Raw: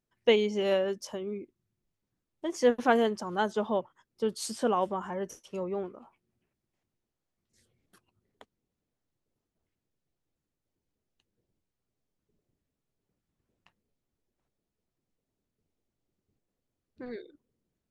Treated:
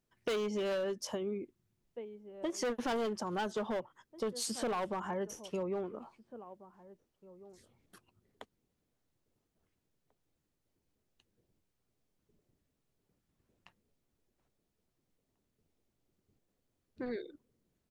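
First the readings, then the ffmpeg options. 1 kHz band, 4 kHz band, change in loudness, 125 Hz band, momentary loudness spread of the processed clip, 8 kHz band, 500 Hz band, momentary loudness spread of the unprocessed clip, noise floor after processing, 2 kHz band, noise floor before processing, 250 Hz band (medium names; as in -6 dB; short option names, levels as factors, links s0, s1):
-7.5 dB, -5.5 dB, -7.5 dB, -4.0 dB, 18 LU, -0.5 dB, -7.5 dB, 17 LU, -83 dBFS, -7.5 dB, under -85 dBFS, -6.0 dB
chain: -filter_complex "[0:a]acrossover=split=620[s0][s1];[s0]crystalizer=i=4.5:c=0[s2];[s2][s1]amix=inputs=2:normalize=0,asplit=2[s3][s4];[s4]adelay=1691,volume=0.0631,highshelf=f=4000:g=-38[s5];[s3][s5]amix=inputs=2:normalize=0,asoftclip=type=hard:threshold=0.0473,acompressor=threshold=0.0141:ratio=4,volume=1.41"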